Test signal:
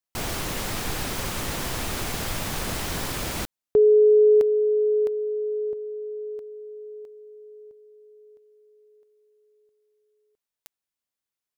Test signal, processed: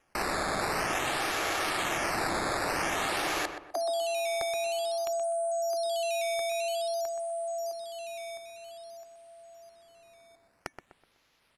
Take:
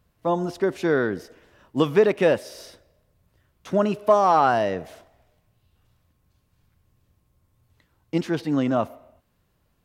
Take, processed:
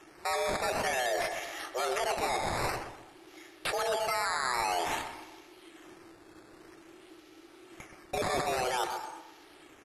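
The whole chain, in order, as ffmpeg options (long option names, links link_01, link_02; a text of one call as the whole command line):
ffmpeg -i in.wav -filter_complex "[0:a]acrossover=split=180|1700[link_01][link_02][link_03];[link_01]acompressor=threshold=-45dB:ratio=2[link_04];[link_02]acompressor=threshold=-24dB:ratio=2.5[link_05];[link_03]acompressor=threshold=-49dB:ratio=2.5[link_06];[link_04][link_05][link_06]amix=inputs=3:normalize=0,highpass=49,highshelf=frequency=2400:gain=-3,afftfilt=real='re*lt(hypot(re,im),0.631)':imag='im*lt(hypot(re,im),0.631)':win_size=1024:overlap=0.75,aecho=1:1:2:0.39,alimiter=limit=-23.5dB:level=0:latency=1:release=334,firequalizer=gain_entry='entry(170,0);entry(750,3);entry(2100,12)':delay=0.05:min_phase=1,areverse,acompressor=threshold=-37dB:ratio=12:attack=3.7:release=57:knee=1:detection=peak,areverse,afreqshift=250,acrusher=samples=10:mix=1:aa=0.000001:lfo=1:lforange=10:lforate=0.51,asplit=2[link_07][link_08];[link_08]adelay=125,lowpass=frequency=2000:poles=1,volume=-7.5dB,asplit=2[link_09][link_10];[link_10]adelay=125,lowpass=frequency=2000:poles=1,volume=0.37,asplit=2[link_11][link_12];[link_12]adelay=125,lowpass=frequency=2000:poles=1,volume=0.37,asplit=2[link_13][link_14];[link_14]adelay=125,lowpass=frequency=2000:poles=1,volume=0.37[link_15];[link_09][link_11][link_13][link_15]amix=inputs=4:normalize=0[link_16];[link_07][link_16]amix=inputs=2:normalize=0,volume=9dB" -ar 44100 -c:a mp2 -b:a 128k out.mp2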